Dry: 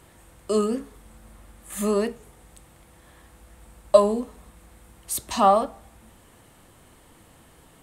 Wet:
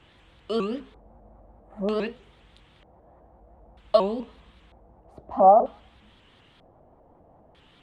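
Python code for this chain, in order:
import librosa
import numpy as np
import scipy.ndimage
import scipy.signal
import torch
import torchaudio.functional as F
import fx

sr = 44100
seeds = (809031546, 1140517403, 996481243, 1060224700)

y = fx.filter_lfo_lowpass(x, sr, shape='square', hz=0.53, low_hz=710.0, high_hz=3300.0, q=3.3)
y = fx.vibrato_shape(y, sr, shape='saw_up', rate_hz=5.0, depth_cents=160.0)
y = y * 10.0 ** (-4.5 / 20.0)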